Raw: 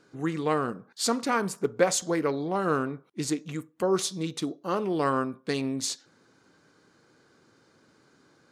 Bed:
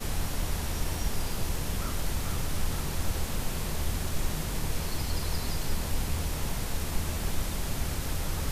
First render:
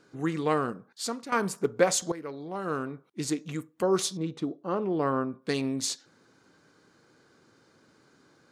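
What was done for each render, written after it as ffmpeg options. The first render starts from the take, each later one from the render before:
-filter_complex "[0:a]asettb=1/sr,asplit=3[s0][s1][s2];[s0]atrim=end=4.174[s3];[s1]atrim=start=4.17:end=5.42,asetpts=PTS-STARTPTS,afade=t=in:d=0.004:c=qsin,afade=t=out:st=1.246:d=0.004:c=qsin,lowpass=f=1100:p=1[s4];[s2]atrim=start=5.416[s5];[s3][s4]acrossfade=d=0.004:c1=hsin:c2=qsin[s6];[s6][s5]acrossfade=d=0.004:c1=qsin:c2=hsin,asplit=3[s7][s8][s9];[s7]atrim=end=1.32,asetpts=PTS-STARTPTS,afade=t=out:st=0.58:d=0.74:silence=0.211349[s10];[s8]atrim=start=1.32:end=2.12,asetpts=PTS-STARTPTS,afade=t=in:d=0.004:c=hsin:silence=0.211349,afade=t=out:st=0.796:d=0.004:c=hsin:silence=0.188365[s11];[s9]atrim=start=2.12,asetpts=PTS-STARTPTS,afade=t=in:d=1.39:silence=0.188365[s12];[s10][s11][s12]concat=n=3:v=0:a=1"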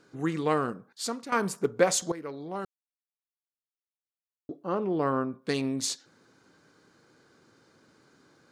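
-filter_complex "[0:a]asplit=3[s0][s1][s2];[s0]atrim=end=2.65,asetpts=PTS-STARTPTS,afade=t=out:st=2.646:d=0.004:c=hsin[s3];[s1]atrim=start=2.65:end=4.49,asetpts=PTS-STARTPTS,volume=0[s4];[s2]atrim=start=4.49,asetpts=PTS-STARTPTS,afade=t=in:d=0.004:c=hsin[s5];[s3][s4][s5]concat=n=3:v=0:a=1"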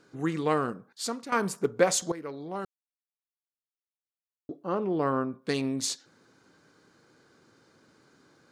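-af anull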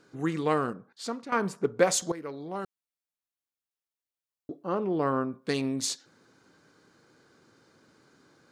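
-filter_complex "[0:a]asettb=1/sr,asplit=3[s0][s1][s2];[s0]atrim=end=0.734[s3];[s1]atrim=start=0.73:end=1.79,asetpts=PTS-STARTPTS,afade=t=in:d=0.004:c=qsin,afade=t=out:st=1.056:d=0.004:c=qsin,aemphasis=mode=reproduction:type=50kf[s4];[s2]atrim=start=1.786[s5];[s3][s4]acrossfade=d=0.004:c1=hsin:c2=qsin[s6];[s6][s5]acrossfade=d=0.004:c1=qsin:c2=hsin"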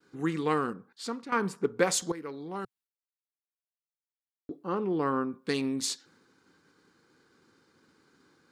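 -af "agate=range=0.0224:threshold=0.00126:ratio=3:detection=peak,equalizer=f=125:t=o:w=0.33:g=-7,equalizer=f=630:t=o:w=0.33:g=-11,equalizer=f=6300:t=o:w=0.33:g=-3"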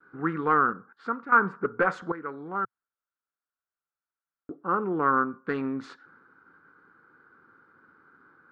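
-af "volume=10,asoftclip=hard,volume=0.1,lowpass=f=1400:t=q:w=5.9"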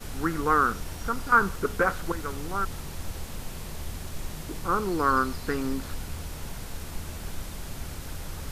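-filter_complex "[1:a]volume=0.531[s0];[0:a][s0]amix=inputs=2:normalize=0"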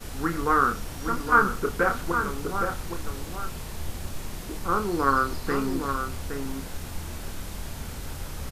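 -filter_complex "[0:a]asplit=2[s0][s1];[s1]adelay=29,volume=0.473[s2];[s0][s2]amix=inputs=2:normalize=0,asplit=2[s3][s4];[s4]adelay=816.3,volume=0.501,highshelf=f=4000:g=-18.4[s5];[s3][s5]amix=inputs=2:normalize=0"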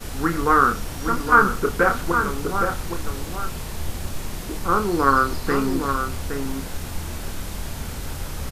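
-af "volume=1.78,alimiter=limit=0.708:level=0:latency=1"

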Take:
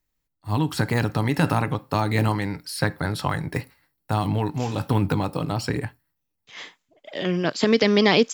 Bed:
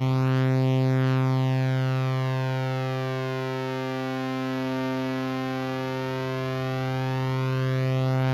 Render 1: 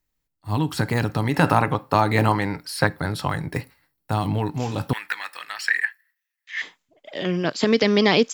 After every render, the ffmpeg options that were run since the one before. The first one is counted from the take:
-filter_complex "[0:a]asettb=1/sr,asplit=3[s0][s1][s2];[s0]atrim=end=1.344[s3];[s1]atrim=start=1.34:end=2.87,asetpts=PTS-STARTPTS,afade=t=in:d=0.004:c=qsin,afade=t=out:st=1.526:d=0.004:c=qsin,equalizer=f=960:w=0.47:g=6.5[s4];[s2]atrim=start=2.866[s5];[s3][s4]acrossfade=d=0.004:c1=hsin:c2=qsin[s6];[s6][s5]acrossfade=d=0.004:c1=qsin:c2=hsin,asettb=1/sr,asplit=3[s7][s8][s9];[s7]atrim=end=4.934[s10];[s8]atrim=start=4.93:end=6.62,asetpts=PTS-STARTPTS,afade=t=in:d=0.004:c=qsin,afade=t=out:st=1.686:d=0.004:c=qsin,highpass=f=1800:t=q:w=9.2[s11];[s9]atrim=start=6.616[s12];[s10][s11]acrossfade=d=0.004:c1=hsin:c2=qsin[s13];[s13][s12]acrossfade=d=0.004:c1=qsin:c2=hsin"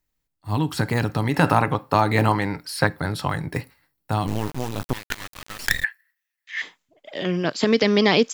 -filter_complex "[0:a]asettb=1/sr,asplit=3[s0][s1][s2];[s0]atrim=end=4.274[s3];[s1]atrim=start=4.27:end=5.84,asetpts=PTS-STARTPTS,afade=t=in:d=0.004:c=qsin,afade=t=out:st=1.566:d=0.004:c=qsin,acrusher=bits=3:dc=4:mix=0:aa=0.000001[s4];[s2]atrim=start=5.836[s5];[s3][s4]acrossfade=d=0.004:c1=hsin:c2=qsin[s6];[s6][s5]acrossfade=d=0.004:c1=qsin:c2=hsin"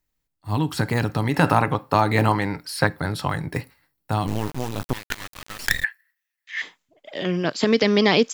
-af anull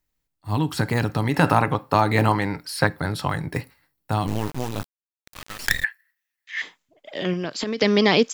-filter_complex "[0:a]asettb=1/sr,asplit=3[s0][s1][s2];[s0]atrim=end=7.334[s3];[s1]atrim=start=7.33:end=7.81,asetpts=PTS-STARTPTS,afade=t=in:d=0.004:c=qsin,afade=t=out:st=0.476:d=0.004:c=qsin,acompressor=threshold=0.0794:ratio=10:attack=3.2:release=140:knee=1:detection=peak[s4];[s2]atrim=start=7.806[s5];[s3][s4]acrossfade=d=0.004:c1=hsin:c2=qsin[s6];[s6][s5]acrossfade=d=0.004:c1=qsin:c2=hsin,asplit=3[s7][s8][s9];[s7]atrim=end=4.87,asetpts=PTS-STARTPTS,afade=t=out:st=4.866:d=0.004:c=hsin[s10];[s8]atrim=start=4.87:end=5.27,asetpts=PTS-STARTPTS,volume=0[s11];[s9]atrim=start=5.27,asetpts=PTS-STARTPTS,afade=t=in:d=0.004:c=hsin[s12];[s10][s11][s12]concat=n=3:v=0:a=1"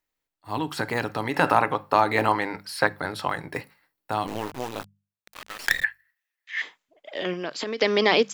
-af "bass=f=250:g=-13,treble=f=4000:g=-5,bandreject=f=50:t=h:w=6,bandreject=f=100:t=h:w=6,bandreject=f=150:t=h:w=6,bandreject=f=200:t=h:w=6"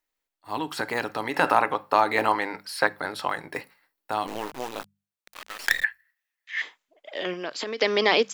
-af "equalizer=f=100:t=o:w=2:g=-11"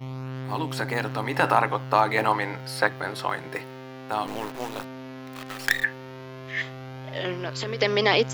-filter_complex "[1:a]volume=0.266[s0];[0:a][s0]amix=inputs=2:normalize=0"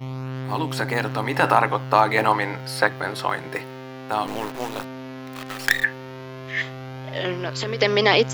-af "volume=1.5,alimiter=limit=0.794:level=0:latency=1"

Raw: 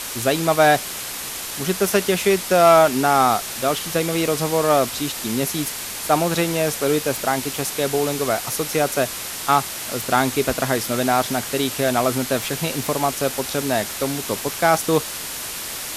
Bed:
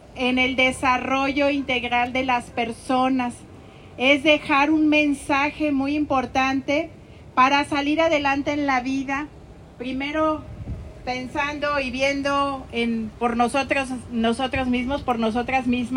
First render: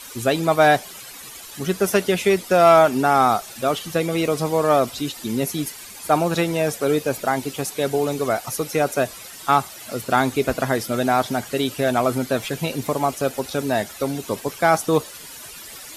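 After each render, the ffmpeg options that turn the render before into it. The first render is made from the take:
-af "afftdn=nr=13:nf=-30"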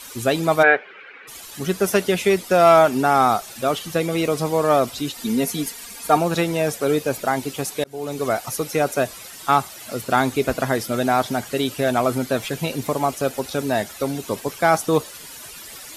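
-filter_complex "[0:a]asplit=3[s0][s1][s2];[s0]afade=t=out:st=0.62:d=0.02[s3];[s1]highpass=410,equalizer=f=440:t=q:w=4:g=9,equalizer=f=690:t=q:w=4:g=-8,equalizer=f=1000:t=q:w=4:g=-6,equalizer=f=1500:t=q:w=4:g=8,equalizer=f=2300:t=q:w=4:g=7,lowpass=f=2500:w=0.5412,lowpass=f=2500:w=1.3066,afade=t=in:st=0.62:d=0.02,afade=t=out:st=1.27:d=0.02[s4];[s2]afade=t=in:st=1.27:d=0.02[s5];[s3][s4][s5]amix=inputs=3:normalize=0,asettb=1/sr,asplit=3[s6][s7][s8];[s6]atrim=end=5.184[s9];[s7]atrim=start=5.18:end=6.17,asetpts=PTS-STARTPTS,afade=t=in:d=0.004:c=qsin,afade=t=out:st=0.986:d=0.004:c=qsin,aecho=1:1:4.3:0.63,atrim=end_sample=43659[s10];[s8]atrim=start=6.166[s11];[s9][s10]acrossfade=d=0.004:c1=hsin:c2=qsin[s12];[s12][s11]acrossfade=d=0.004:c1=qsin:c2=hsin,asplit=2[s13][s14];[s13]atrim=end=7.84,asetpts=PTS-STARTPTS,afade=t=out:st=7.836:d=0.004:c=hsin[s15];[s14]atrim=start=7.84,asetpts=PTS-STARTPTS,afade=t=in:d=0.43[s16];[s15][s16]concat=n=2:v=0:a=1"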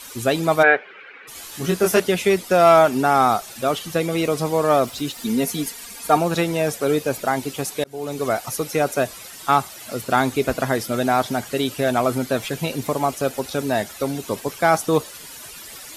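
-filter_complex "[0:a]asettb=1/sr,asplit=3[s0][s1][s2];[s0]atrim=end=1.344[s3];[s1]atrim=start=1.34:end=2,asetpts=PTS-STARTPTS,afade=t=in:d=0.004:c=qsin,afade=t=out:st=0.656:d=0.004:c=qsin,asplit=2[s4][s5];[s5]adelay=23,volume=0.708[s6];[s4][s6]amix=inputs=2:normalize=0,atrim=end_sample=29106[s7];[s2]atrim=start=1.996[s8];[s3][s7]acrossfade=d=0.004:c1=hsin:c2=qsin[s9];[s9][s8]acrossfade=d=0.004:c1=qsin:c2=hsin,asettb=1/sr,asplit=3[s10][s11][s12];[s10]atrim=end=4.694[s13];[s11]atrim=start=4.69:end=5.66,asetpts=PTS-STARTPTS,afade=t=in:d=0.004:c=qsin,afade=t=out:st=0.966:d=0.004:c=qsin,aeval=exprs='val(0)*gte(abs(val(0)),0.0075)':c=same[s14];[s12]atrim=start=5.656[s15];[s13][s14]acrossfade=d=0.004:c1=hsin:c2=qsin[s16];[s16][s15]acrossfade=d=0.004:c1=qsin:c2=hsin"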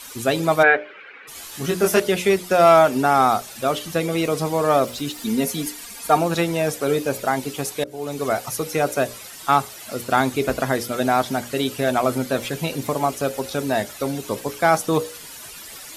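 -af "bandreject=f=60:t=h:w=6,bandreject=f=120:t=h:w=6,bandreject=f=180:t=h:w=6,bandreject=f=240:t=h:w=6,bandreject=f=300:t=h:w=6,bandreject=f=360:t=h:w=6,bandreject=f=420:t=h:w=6,bandreject=f=480:t=h:w=6,bandreject=f=540:t=h:w=6,bandreject=f=600:t=h:w=6"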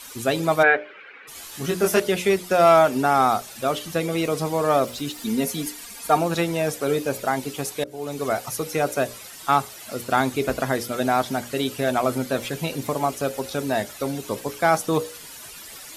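-af "volume=0.794"

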